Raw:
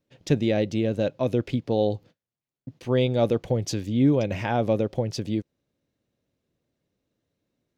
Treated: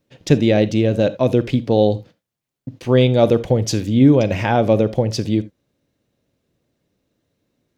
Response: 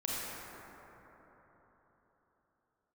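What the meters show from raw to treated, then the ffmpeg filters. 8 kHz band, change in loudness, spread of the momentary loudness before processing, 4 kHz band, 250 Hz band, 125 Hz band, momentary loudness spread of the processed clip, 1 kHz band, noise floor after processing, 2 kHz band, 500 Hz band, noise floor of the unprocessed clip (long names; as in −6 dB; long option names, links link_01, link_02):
+8.0 dB, +8.0 dB, 8 LU, +8.0 dB, +8.0 dB, +8.5 dB, 8 LU, +8.0 dB, −84 dBFS, +8.0 dB, +8.0 dB, below −85 dBFS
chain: -filter_complex "[0:a]asplit=2[link_01][link_02];[1:a]atrim=start_sample=2205,atrim=end_sample=3969[link_03];[link_02][link_03]afir=irnorm=-1:irlink=0,volume=-12dB[link_04];[link_01][link_04]amix=inputs=2:normalize=0,volume=6.5dB"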